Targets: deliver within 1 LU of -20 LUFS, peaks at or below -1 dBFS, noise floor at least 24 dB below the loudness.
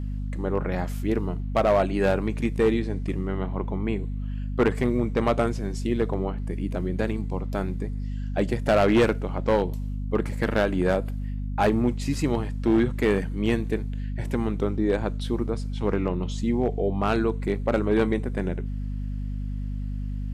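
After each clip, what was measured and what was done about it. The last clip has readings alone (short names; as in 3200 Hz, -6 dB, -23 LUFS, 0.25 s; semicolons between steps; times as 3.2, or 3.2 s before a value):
clipped 0.7%; flat tops at -14.0 dBFS; hum 50 Hz; harmonics up to 250 Hz; hum level -27 dBFS; loudness -26.0 LUFS; peak -14.0 dBFS; loudness target -20.0 LUFS
-> clip repair -14 dBFS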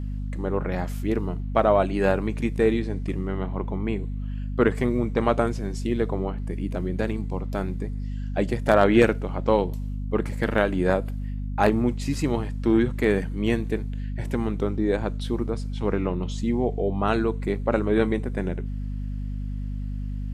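clipped 0.0%; hum 50 Hz; harmonics up to 250 Hz; hum level -27 dBFS
-> de-hum 50 Hz, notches 5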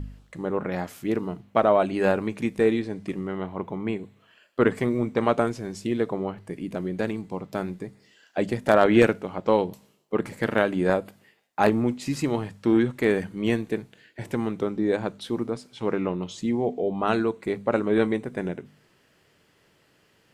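hum none; loudness -26.0 LUFS; peak -4.5 dBFS; loudness target -20.0 LUFS
-> gain +6 dB; limiter -1 dBFS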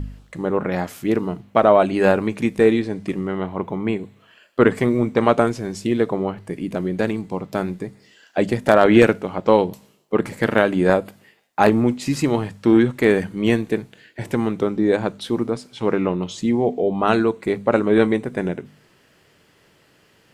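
loudness -20.0 LUFS; peak -1.0 dBFS; noise floor -57 dBFS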